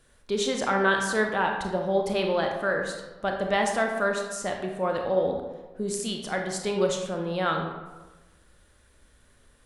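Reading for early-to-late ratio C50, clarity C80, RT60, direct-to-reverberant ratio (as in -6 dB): 4.0 dB, 6.5 dB, 1.2 s, 2.0 dB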